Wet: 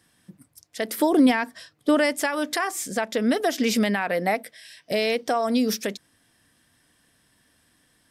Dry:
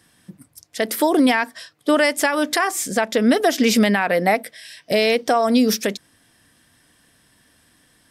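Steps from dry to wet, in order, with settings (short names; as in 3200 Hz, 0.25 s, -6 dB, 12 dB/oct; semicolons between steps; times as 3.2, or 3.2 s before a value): 0.98–2.16 low shelf 340 Hz +8.5 dB; gain -6 dB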